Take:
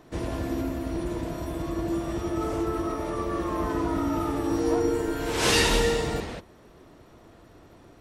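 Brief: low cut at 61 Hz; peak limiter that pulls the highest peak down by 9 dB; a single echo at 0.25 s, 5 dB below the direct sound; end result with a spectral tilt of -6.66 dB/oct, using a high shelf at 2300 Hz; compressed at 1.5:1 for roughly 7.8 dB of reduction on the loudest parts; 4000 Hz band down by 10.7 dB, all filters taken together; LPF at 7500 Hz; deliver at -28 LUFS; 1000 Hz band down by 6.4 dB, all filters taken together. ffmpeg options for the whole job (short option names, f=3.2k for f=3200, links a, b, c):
-af "highpass=61,lowpass=7.5k,equalizer=f=1k:t=o:g=-6.5,highshelf=f=2.3k:g=-7,equalizer=f=4k:t=o:g=-7,acompressor=threshold=-44dB:ratio=1.5,alimiter=level_in=7dB:limit=-24dB:level=0:latency=1,volume=-7dB,aecho=1:1:250:0.562,volume=10.5dB"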